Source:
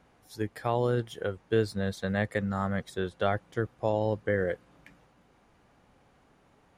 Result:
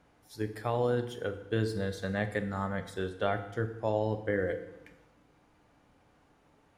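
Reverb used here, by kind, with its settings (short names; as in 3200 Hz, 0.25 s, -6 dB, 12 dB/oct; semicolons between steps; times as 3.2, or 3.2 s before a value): FDN reverb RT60 0.89 s, low-frequency decay 1.2×, high-frequency decay 0.9×, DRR 7 dB; gain -3 dB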